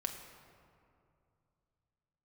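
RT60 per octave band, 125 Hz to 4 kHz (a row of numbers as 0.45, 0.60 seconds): 3.6, 2.9, 2.6, 2.5, 1.8, 1.2 seconds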